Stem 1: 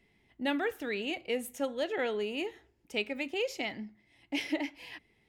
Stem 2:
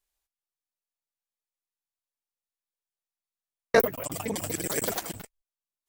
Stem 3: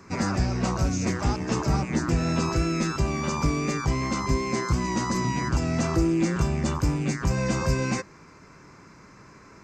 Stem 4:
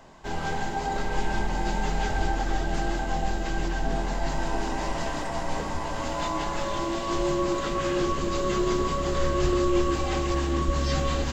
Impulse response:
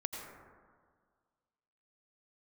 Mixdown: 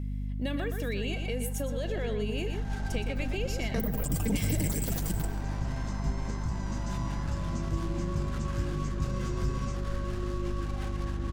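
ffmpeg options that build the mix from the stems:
-filter_complex "[0:a]aecho=1:1:1.8:0.46,alimiter=level_in=2dB:limit=-24dB:level=0:latency=1:release=21,volume=-2dB,volume=1.5dB,asplit=3[a][b][c];[b]volume=-8dB[d];[1:a]alimiter=limit=-19dB:level=0:latency=1,volume=-4.5dB,asplit=2[e][f];[f]volume=-4.5dB[g];[2:a]adelay=1750,volume=-20dB[h];[3:a]equalizer=f=1.5k:w=2.8:g=5,adynamicsmooth=sensitivity=5.5:basefreq=790,lowshelf=f=270:g=-9.5,adelay=700,volume=-13dB,afade=t=in:st=2.32:d=0.49:silence=0.334965[i];[c]apad=whole_len=501986[j];[h][j]sidechaincompress=threshold=-52dB:ratio=8:attack=16:release=787[k];[4:a]atrim=start_sample=2205[l];[g][l]afir=irnorm=-1:irlink=0[m];[d]aecho=0:1:119:1[n];[a][e][k][i][m][n]amix=inputs=6:normalize=0,bass=f=250:g=12,treble=f=4k:g=7,acrossover=split=260[o][p];[p]acompressor=threshold=-34dB:ratio=4[q];[o][q]amix=inputs=2:normalize=0,aeval=exprs='val(0)+0.0251*(sin(2*PI*50*n/s)+sin(2*PI*2*50*n/s)/2+sin(2*PI*3*50*n/s)/3+sin(2*PI*4*50*n/s)/4+sin(2*PI*5*50*n/s)/5)':c=same"

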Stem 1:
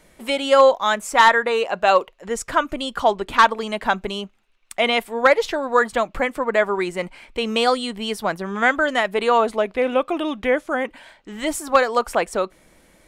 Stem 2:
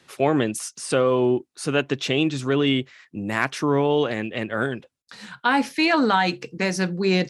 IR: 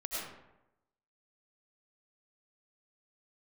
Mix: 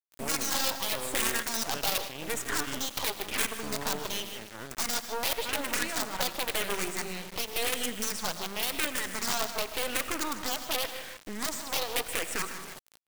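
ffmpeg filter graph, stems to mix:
-filter_complex "[0:a]acrossover=split=820|3200[a][b][c];[a]acompressor=threshold=-33dB:ratio=4[d];[b]acompressor=threshold=-29dB:ratio=4[e];[c]acompressor=threshold=-33dB:ratio=4[f];[d][e][f]amix=inputs=3:normalize=0,aeval=exprs='(mod(12.6*val(0)+1,2)-1)/12.6':c=same,asplit=2[g][h];[h]afreqshift=-0.91[i];[g][i]amix=inputs=2:normalize=1,volume=3dB,asplit=3[j][k][l];[k]volume=-12dB[m];[l]volume=-11.5dB[n];[1:a]volume=-17dB,asplit=2[o][p];[p]volume=-9.5dB[q];[2:a]atrim=start_sample=2205[r];[m][q]amix=inputs=2:normalize=0[s];[s][r]afir=irnorm=-1:irlink=0[t];[n]aecho=0:1:155|310|465|620|775:1|0.34|0.116|0.0393|0.0134[u];[j][o][t][u]amix=inputs=4:normalize=0,acrusher=bits=4:dc=4:mix=0:aa=0.000001,lowshelf=f=340:g=-3"

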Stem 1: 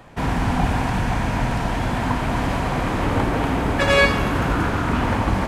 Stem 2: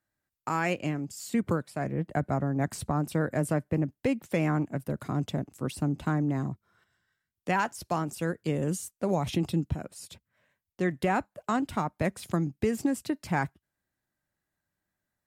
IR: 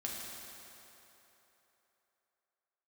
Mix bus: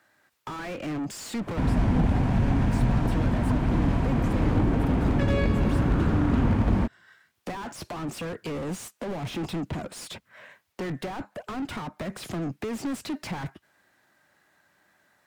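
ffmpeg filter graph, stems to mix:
-filter_complex "[0:a]highshelf=f=6.6k:g=-7.5,adelay=1400,volume=-1.5dB,asplit=2[a][b];[b]volume=-9.5dB[c];[1:a]asplit=2[d][e];[e]highpass=f=720:p=1,volume=38dB,asoftclip=type=tanh:threshold=-15dB[f];[d][f]amix=inputs=2:normalize=0,lowpass=f=2.5k:p=1,volume=-6dB,volume=-6.5dB[g];[2:a]atrim=start_sample=2205[h];[c][h]afir=irnorm=-1:irlink=0[i];[a][g][i]amix=inputs=3:normalize=0,acrossover=split=370[j][k];[k]acompressor=threshold=-38dB:ratio=3[l];[j][l]amix=inputs=2:normalize=0,aeval=exprs='0.188*(abs(mod(val(0)/0.188+3,4)-2)-1)':c=same"

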